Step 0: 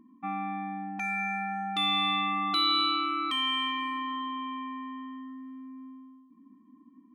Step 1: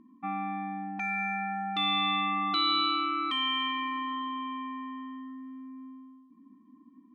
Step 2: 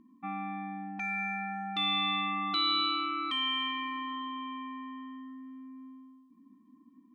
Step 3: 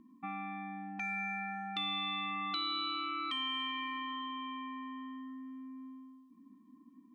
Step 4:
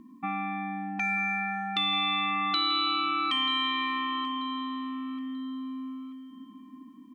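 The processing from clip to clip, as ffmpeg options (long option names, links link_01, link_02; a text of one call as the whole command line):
ffmpeg -i in.wav -af "lowpass=4400" out.wav
ffmpeg -i in.wav -af "equalizer=frequency=630:width=0.37:gain=-4.5" out.wav
ffmpeg -i in.wav -filter_complex "[0:a]acrossover=split=1400|4700[link_01][link_02][link_03];[link_01]acompressor=threshold=-41dB:ratio=4[link_04];[link_02]acompressor=threshold=-39dB:ratio=4[link_05];[link_03]acompressor=threshold=-50dB:ratio=4[link_06];[link_04][link_05][link_06]amix=inputs=3:normalize=0" out.wav
ffmpeg -i in.wav -filter_complex "[0:a]asplit=2[link_01][link_02];[link_02]adelay=936,lowpass=frequency=4200:poles=1,volume=-14dB,asplit=2[link_03][link_04];[link_04]adelay=936,lowpass=frequency=4200:poles=1,volume=0.34,asplit=2[link_05][link_06];[link_06]adelay=936,lowpass=frequency=4200:poles=1,volume=0.34[link_07];[link_01][link_03][link_05][link_07]amix=inputs=4:normalize=0,volume=9dB" out.wav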